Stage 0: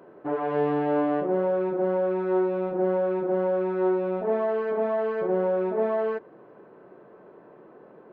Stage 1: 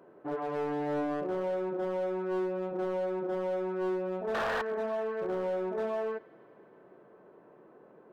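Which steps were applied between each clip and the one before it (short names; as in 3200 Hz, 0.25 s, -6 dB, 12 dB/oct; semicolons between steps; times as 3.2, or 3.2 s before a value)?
painted sound noise, 4.34–4.62, 430–1900 Hz -23 dBFS; thin delay 0.106 s, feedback 82%, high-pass 1700 Hz, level -18.5 dB; hard clip -21.5 dBFS, distortion -14 dB; gain -6.5 dB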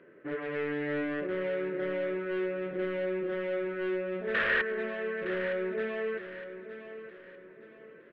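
EQ curve 550 Hz 0 dB, 790 Hz -16 dB, 1900 Hz +13 dB, 3100 Hz +6 dB, 6200 Hz -16 dB; feedback echo 0.914 s, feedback 36%, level -11.5 dB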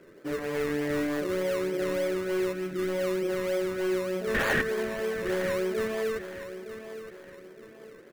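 spectral gain 2.53–2.89, 390–1200 Hz -13 dB; in parallel at -3.5 dB: decimation with a swept rate 22×, swing 60% 3.3 Hz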